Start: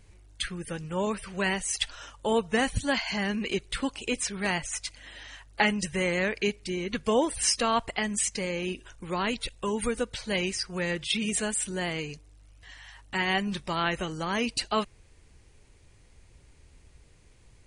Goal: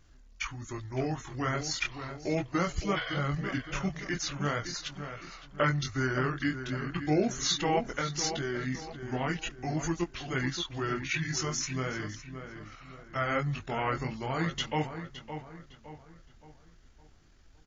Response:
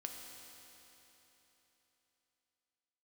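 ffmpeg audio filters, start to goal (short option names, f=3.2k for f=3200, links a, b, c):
-filter_complex "[0:a]flanger=delay=16:depth=6.5:speed=0.39,asplit=2[a][b];[b]adelay=563,lowpass=f=3.6k:p=1,volume=-9dB,asplit=2[c][d];[d]adelay=563,lowpass=f=3.6k:p=1,volume=0.42,asplit=2[e][f];[f]adelay=563,lowpass=f=3.6k:p=1,volume=0.42,asplit=2[g][h];[h]adelay=563,lowpass=f=3.6k:p=1,volume=0.42,asplit=2[i][j];[j]adelay=563,lowpass=f=3.6k:p=1,volume=0.42[k];[a][c][e][g][i][k]amix=inputs=6:normalize=0,asetrate=31183,aresample=44100,atempo=1.41421"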